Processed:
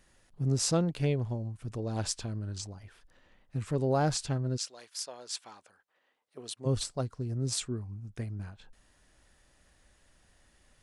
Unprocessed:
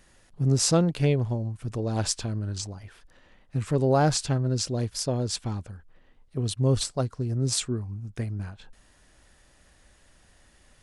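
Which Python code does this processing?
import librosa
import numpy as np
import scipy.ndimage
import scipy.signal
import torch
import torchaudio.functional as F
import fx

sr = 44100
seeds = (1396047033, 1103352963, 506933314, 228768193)

y = fx.highpass(x, sr, hz=fx.line((4.56, 1200.0), (6.65, 430.0)), slope=12, at=(4.56, 6.65), fade=0.02)
y = y * 10.0 ** (-6.0 / 20.0)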